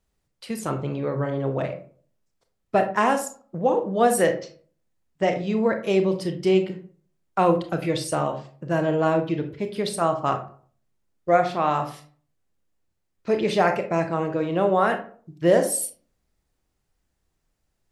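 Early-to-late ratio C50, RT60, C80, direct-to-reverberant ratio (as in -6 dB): 11.0 dB, 0.45 s, 15.5 dB, 6.0 dB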